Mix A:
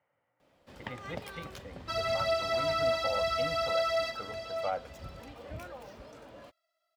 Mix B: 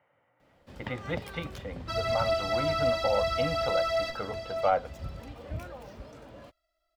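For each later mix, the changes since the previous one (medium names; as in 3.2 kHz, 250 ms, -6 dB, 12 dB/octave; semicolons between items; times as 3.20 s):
speech +8.5 dB; first sound: add bass shelf 210 Hz +9 dB; second sound: remove high-pass 560 Hz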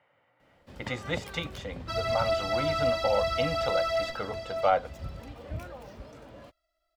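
speech: remove distance through air 360 m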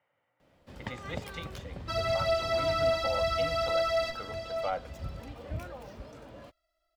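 speech -9.0 dB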